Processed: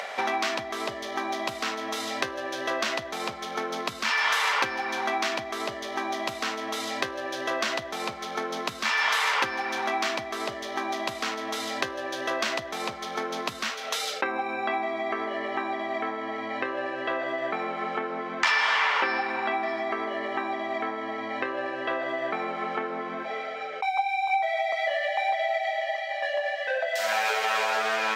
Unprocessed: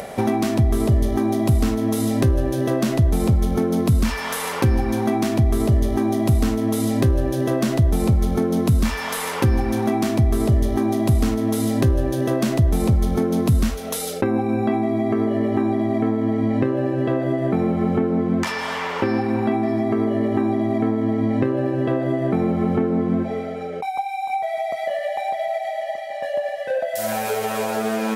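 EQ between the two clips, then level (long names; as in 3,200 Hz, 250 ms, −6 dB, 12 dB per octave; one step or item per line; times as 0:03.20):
high-pass filter 1,200 Hz 12 dB per octave
high-frequency loss of the air 190 metres
high-shelf EQ 7,600 Hz +10.5 dB
+7.5 dB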